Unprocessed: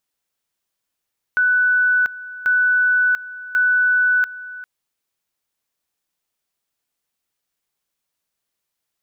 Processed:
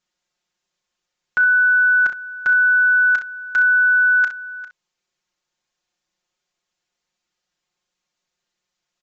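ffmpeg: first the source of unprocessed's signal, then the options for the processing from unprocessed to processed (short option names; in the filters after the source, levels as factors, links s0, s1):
-f lavfi -i "aevalsrc='pow(10,(-13-17.5*gte(mod(t,1.09),0.69))/20)*sin(2*PI*1490*t)':d=3.27:s=44100"
-filter_complex "[0:a]aecho=1:1:5.6:0.98,aresample=16000,aresample=44100,asplit=2[s0][s1];[s1]aecho=0:1:33|64:0.282|0.282[s2];[s0][s2]amix=inputs=2:normalize=0"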